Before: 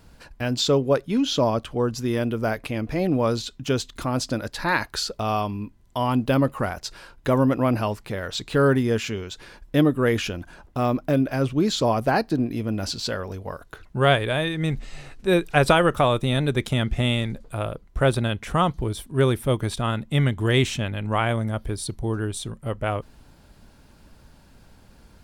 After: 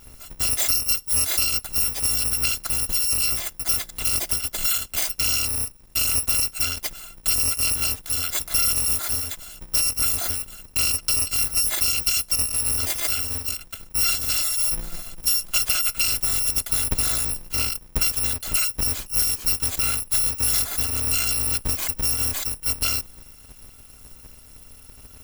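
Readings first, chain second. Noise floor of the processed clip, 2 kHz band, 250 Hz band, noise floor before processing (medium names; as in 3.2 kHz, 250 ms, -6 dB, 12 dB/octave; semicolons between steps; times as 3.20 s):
-47 dBFS, -3.0 dB, -18.0 dB, -53 dBFS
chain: bit-reversed sample order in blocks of 256 samples; compression, threshold -24 dBFS, peak gain reduction 11.5 dB; trim +5.5 dB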